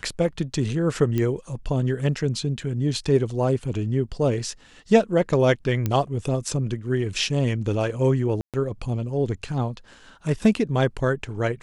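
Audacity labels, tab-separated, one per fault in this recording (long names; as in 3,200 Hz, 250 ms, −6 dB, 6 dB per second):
1.180000	1.180000	click −13 dBFS
5.860000	5.860000	click −11 dBFS
8.410000	8.540000	drop-out 127 ms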